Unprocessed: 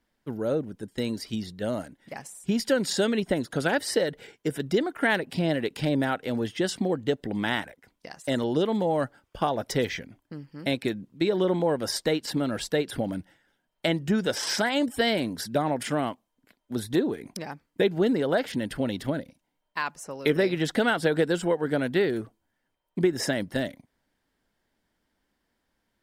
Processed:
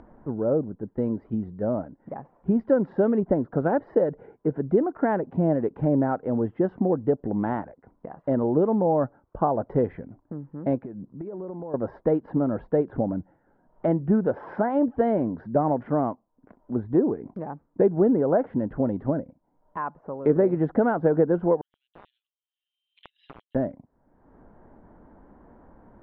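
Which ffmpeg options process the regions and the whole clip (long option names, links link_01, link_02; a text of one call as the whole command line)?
ffmpeg -i in.wav -filter_complex "[0:a]asettb=1/sr,asplit=3[link_01][link_02][link_03];[link_01]atrim=end=10.824[link_04];[link_02]atrim=start=10.82:end=11.74,asetpts=PTS-STARTPTS,afade=type=in:duration=0.004:curve=qsin,afade=type=out:start_time=0.916:duration=0.004:curve=qsin,lowpass=3300,acompressor=threshold=-36dB:ratio=10:attack=3.2:release=140:knee=1:detection=peak[link_05];[link_03]atrim=start=11.736[link_06];[link_04][link_05]acrossfade=duration=0.004:curve1=hsin:curve2=qsin[link_07];[link_07][link_06]acrossfade=duration=0.004:curve1=qsin:curve2=hsin,asettb=1/sr,asplit=3[link_08][link_09][link_10];[link_08]atrim=end=21.614[link_11];[link_09]atrim=start=21.61:end=23.55,asetpts=PTS-STARTPTS,afade=type=in:duration=0.004:curve=qsin,afade=type=out:start_time=1.936:duration=0.004:curve=qsin,asuperpass=centerf=3400:order=8:qfactor=2.7,aeval=exprs='(mod(44.7*val(0)+1,2)-1)/44.7':channel_layout=same[link_12];[link_10]atrim=start=23.546[link_13];[link_11][link_12]acrossfade=duration=0.004:curve1=hsin:curve2=qsin[link_14];[link_14][link_13]acrossfade=duration=0.004:curve1=qsin:curve2=hsin,lowpass=frequency=1100:width=0.5412,lowpass=frequency=1100:width=1.3066,acompressor=mode=upward:threshold=-36dB:ratio=2.5,volume=3.5dB" out.wav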